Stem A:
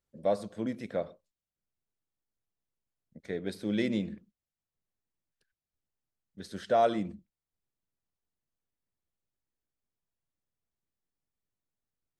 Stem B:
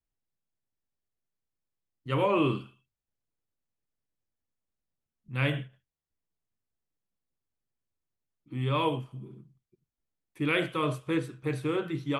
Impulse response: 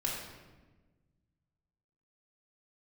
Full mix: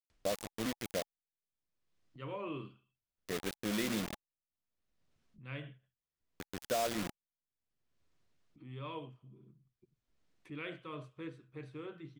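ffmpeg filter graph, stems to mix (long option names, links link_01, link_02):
-filter_complex "[0:a]acompressor=threshold=-29dB:ratio=3,acrusher=bits=5:mix=0:aa=0.000001,adynamicequalizer=threshold=0.00447:dfrequency=1500:dqfactor=0.7:tfrequency=1500:tqfactor=0.7:attack=5:release=100:ratio=0.375:range=2:mode=boostabove:tftype=highshelf,volume=-3.5dB[link_01];[1:a]lowpass=5600,bandreject=frequency=60:width_type=h:width=6,bandreject=frequency=120:width_type=h:width=6,adelay=100,volume=-16dB[link_02];[link_01][link_02]amix=inputs=2:normalize=0,bandreject=frequency=840:width=13,acompressor=mode=upward:threshold=-51dB:ratio=2.5"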